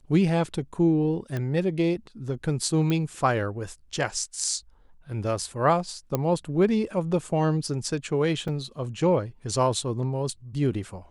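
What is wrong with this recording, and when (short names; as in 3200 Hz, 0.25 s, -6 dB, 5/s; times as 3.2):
1.37 pop -18 dBFS
2.9 pop -15 dBFS
6.15 pop -11 dBFS
8.48 gap 3.8 ms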